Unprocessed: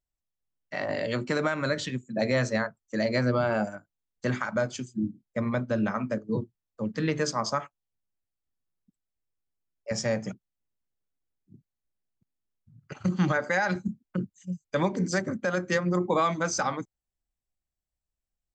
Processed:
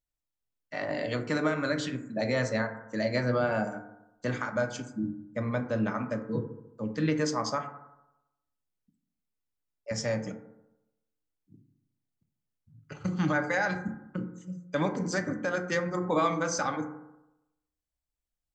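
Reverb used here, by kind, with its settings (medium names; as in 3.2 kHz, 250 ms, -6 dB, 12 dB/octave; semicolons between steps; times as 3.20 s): FDN reverb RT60 0.91 s, low-frequency decay 0.95×, high-frequency decay 0.3×, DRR 5.5 dB; trim -3 dB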